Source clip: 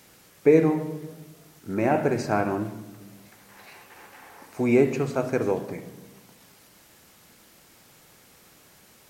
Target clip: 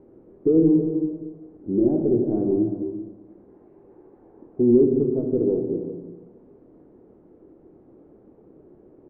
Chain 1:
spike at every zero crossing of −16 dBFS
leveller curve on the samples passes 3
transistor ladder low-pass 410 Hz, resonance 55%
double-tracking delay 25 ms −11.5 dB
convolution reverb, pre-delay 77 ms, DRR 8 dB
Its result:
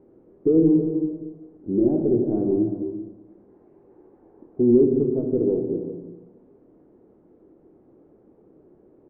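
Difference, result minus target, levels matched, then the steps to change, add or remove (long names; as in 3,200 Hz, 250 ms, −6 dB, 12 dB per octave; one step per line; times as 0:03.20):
spike at every zero crossing: distortion −9 dB
change: spike at every zero crossing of −7 dBFS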